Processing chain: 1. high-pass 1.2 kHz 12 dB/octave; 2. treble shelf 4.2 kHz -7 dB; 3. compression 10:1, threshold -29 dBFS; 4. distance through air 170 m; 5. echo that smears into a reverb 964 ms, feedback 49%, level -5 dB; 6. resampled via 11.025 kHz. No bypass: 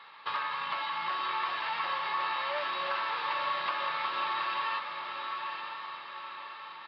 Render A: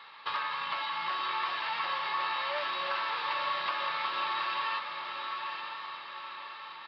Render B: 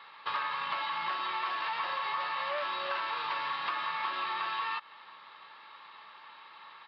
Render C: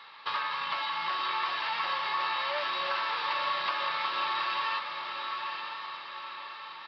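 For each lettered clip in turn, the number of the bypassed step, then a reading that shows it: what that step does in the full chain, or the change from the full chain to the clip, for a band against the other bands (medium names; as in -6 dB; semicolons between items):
2, 4 kHz band +2.5 dB; 5, momentary loudness spread change +8 LU; 4, 4 kHz band +3.5 dB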